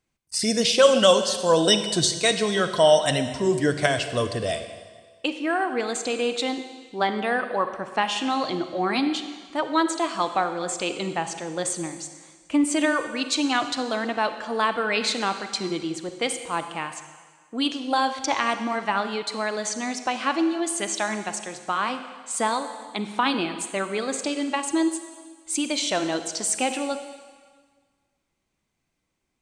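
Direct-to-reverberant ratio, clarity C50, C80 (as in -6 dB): 8.5 dB, 9.0 dB, 10.5 dB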